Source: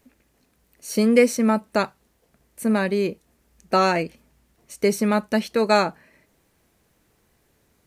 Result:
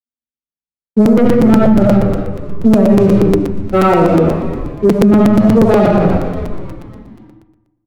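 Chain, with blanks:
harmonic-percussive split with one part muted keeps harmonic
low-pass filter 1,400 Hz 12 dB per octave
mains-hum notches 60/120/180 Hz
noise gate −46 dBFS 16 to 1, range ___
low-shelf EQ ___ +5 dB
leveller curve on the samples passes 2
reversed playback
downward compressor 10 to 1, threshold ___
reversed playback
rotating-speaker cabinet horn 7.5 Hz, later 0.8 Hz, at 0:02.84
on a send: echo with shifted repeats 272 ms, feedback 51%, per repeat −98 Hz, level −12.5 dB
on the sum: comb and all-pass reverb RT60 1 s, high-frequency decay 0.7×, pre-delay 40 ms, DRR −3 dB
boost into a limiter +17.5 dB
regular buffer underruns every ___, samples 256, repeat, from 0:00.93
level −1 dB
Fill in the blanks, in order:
−58 dB, 440 Hz, −21 dBFS, 0.12 s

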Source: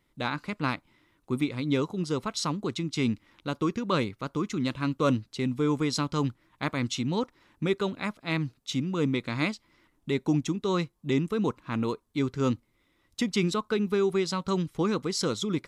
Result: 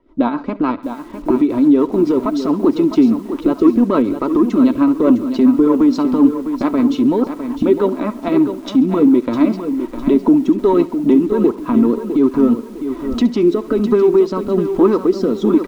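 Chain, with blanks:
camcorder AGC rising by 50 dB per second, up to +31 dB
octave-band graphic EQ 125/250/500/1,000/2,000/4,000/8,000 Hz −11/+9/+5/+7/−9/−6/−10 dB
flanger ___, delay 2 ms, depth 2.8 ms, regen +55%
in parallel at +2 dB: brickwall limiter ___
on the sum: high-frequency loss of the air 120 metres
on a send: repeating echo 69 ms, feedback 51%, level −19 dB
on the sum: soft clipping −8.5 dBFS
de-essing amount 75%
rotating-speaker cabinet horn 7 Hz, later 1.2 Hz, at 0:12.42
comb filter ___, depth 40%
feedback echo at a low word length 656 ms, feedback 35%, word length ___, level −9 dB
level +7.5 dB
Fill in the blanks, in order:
1.4 Hz, −20.5 dBFS, 3.1 ms, 8 bits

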